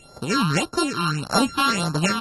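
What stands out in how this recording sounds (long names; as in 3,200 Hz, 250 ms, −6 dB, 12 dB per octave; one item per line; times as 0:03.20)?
a buzz of ramps at a fixed pitch in blocks of 32 samples
phaser sweep stages 6, 1.7 Hz, lowest notch 530–2,800 Hz
AAC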